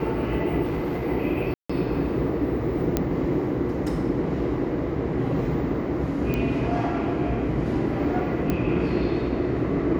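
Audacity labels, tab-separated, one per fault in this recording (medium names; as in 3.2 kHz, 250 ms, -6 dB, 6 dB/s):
0.630000	1.050000	clipped -23.5 dBFS
1.540000	1.700000	dropout 155 ms
2.970000	2.970000	pop -8 dBFS
6.340000	6.340000	pop -14 dBFS
8.500000	8.500000	pop -12 dBFS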